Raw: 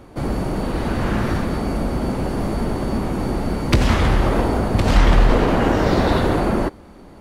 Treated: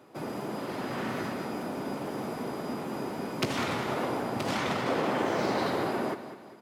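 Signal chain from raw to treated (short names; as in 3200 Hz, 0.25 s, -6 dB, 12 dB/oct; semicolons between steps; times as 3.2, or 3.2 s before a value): HPF 110 Hz 24 dB/oct; low shelf 170 Hz -9.5 dB; notch 1500 Hz, Q 26; feedback echo 0.217 s, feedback 44%, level -12 dB; speed mistake 44.1 kHz file played as 48 kHz; gain -9 dB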